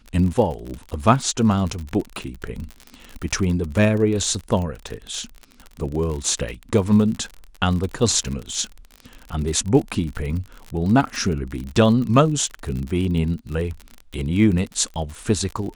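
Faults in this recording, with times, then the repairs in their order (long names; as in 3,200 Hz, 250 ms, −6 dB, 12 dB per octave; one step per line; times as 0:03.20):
surface crackle 51 per second −27 dBFS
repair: click removal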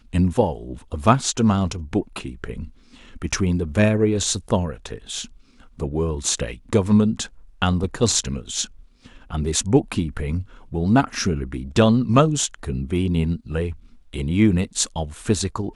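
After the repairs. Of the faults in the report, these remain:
none of them is left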